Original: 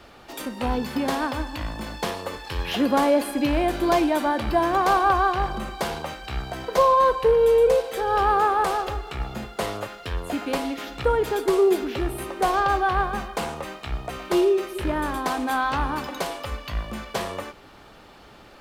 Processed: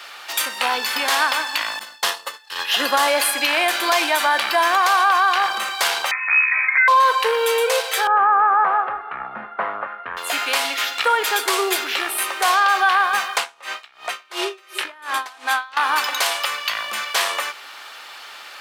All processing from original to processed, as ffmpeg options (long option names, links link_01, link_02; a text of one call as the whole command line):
ffmpeg -i in.wav -filter_complex "[0:a]asettb=1/sr,asplit=3[link_01][link_02][link_03];[link_01]atrim=end=1.794[link_04];[link_02]atrim=start=1.79:end=3.08,asetpts=PTS-STARTPTS,afade=type=in:duration=0.004:curve=qsin,afade=type=out:start_time=1.286:duration=0.004:curve=qsin,agate=range=-33dB:threshold=-25dB:ratio=3:release=100:detection=peak,equalizer=frequency=92:width_type=o:width=2.2:gain=7,bandreject=frequency=2300:width=7[link_05];[link_03]atrim=start=3.076[link_06];[link_04][link_05]acrossfade=duration=0.004:curve1=hsin:curve2=qsin[link_07];[link_07][link_06]acrossfade=duration=0.004:curve1=qsin:curve2=hsin,asettb=1/sr,asplit=3[link_08][link_09][link_10];[link_08]atrim=end=6.114[link_11];[link_09]atrim=start=6.11:end=6.88,asetpts=PTS-STARTPTS,afade=type=in:duration=0.004:curve=qsin,afade=type=out:start_time=0.766:duration=0.004:curve=qsin,lowpass=frequency=2200:width_type=q:width=0.5098,lowpass=frequency=2200:width_type=q:width=0.6013,lowpass=frequency=2200:width_type=q:width=0.9,lowpass=frequency=2200:width_type=q:width=2.563,afreqshift=-2600,acompressor=threshold=-21dB:ratio=2.5:attack=3.2:release=140:knee=1:detection=peak[link_12];[link_10]atrim=start=6.876[link_13];[link_11][link_12]acrossfade=duration=0.004:curve1=hsin:curve2=qsin[link_14];[link_14][link_13]acrossfade=duration=0.004:curve1=qsin:curve2=hsin,asettb=1/sr,asplit=3[link_15][link_16][link_17];[link_15]atrim=end=8.074[link_18];[link_16]atrim=start=8.07:end=10.17,asetpts=PTS-STARTPTS,afade=type=in:duration=0.004:curve=qsin,afade=type=out:start_time=2.096:duration=0.004:curve=qsin,lowpass=frequency=1500:width=0.5412,lowpass=frequency=1500:width=1.3066,lowshelf=frequency=290:width_type=q:width=1.5:gain=7.5[link_19];[link_17]atrim=start=10.166[link_20];[link_18][link_19]acrossfade=duration=0.004:curve1=hsin:curve2=qsin[link_21];[link_21][link_20]acrossfade=duration=0.004:curve1=qsin:curve2=hsin,asettb=1/sr,asplit=3[link_22][link_23][link_24];[link_22]atrim=end=13.374[link_25];[link_23]atrim=start=13.37:end=15.77,asetpts=PTS-STARTPTS,afade=type=in:duration=0.004:curve=qsin,afade=type=out:start_time=2.396:duration=0.004:curve=qsin,highshelf=frequency=10000:gain=-10,aeval=exprs='val(0)*pow(10,-27*(0.5-0.5*cos(2*PI*2.8*n/s))/20)':channel_layout=same[link_26];[link_24]atrim=start=15.766[link_27];[link_25][link_26]acrossfade=duration=0.004:curve1=hsin:curve2=qsin[link_28];[link_28][link_27]acrossfade=duration=0.004:curve1=qsin:curve2=hsin,highpass=1400,alimiter=level_in=23dB:limit=-1dB:release=50:level=0:latency=1,volume=-7dB" out.wav